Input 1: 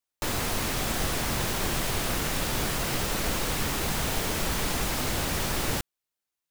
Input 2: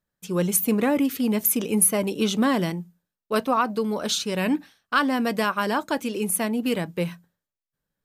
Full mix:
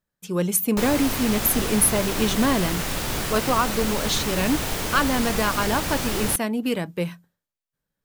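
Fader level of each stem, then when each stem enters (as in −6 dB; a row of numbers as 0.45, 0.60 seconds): +1.5, 0.0 decibels; 0.55, 0.00 seconds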